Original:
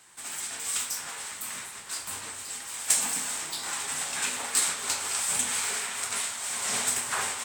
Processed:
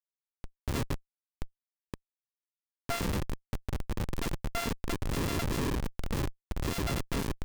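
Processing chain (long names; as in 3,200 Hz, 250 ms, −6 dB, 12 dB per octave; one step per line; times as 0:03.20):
samples sorted by size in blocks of 64 samples
comparator with hysteresis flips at −23 dBFS
level +2 dB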